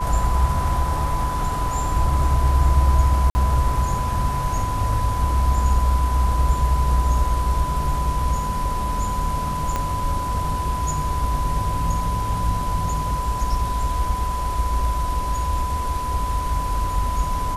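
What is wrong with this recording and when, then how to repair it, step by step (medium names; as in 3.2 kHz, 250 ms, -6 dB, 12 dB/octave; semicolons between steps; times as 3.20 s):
whine 1 kHz -25 dBFS
3.30–3.35 s: dropout 50 ms
9.76 s: pop -10 dBFS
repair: de-click; band-stop 1 kHz, Q 30; interpolate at 3.30 s, 50 ms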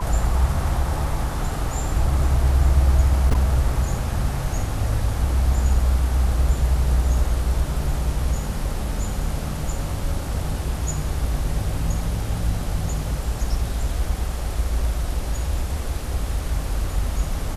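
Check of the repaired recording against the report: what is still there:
9.76 s: pop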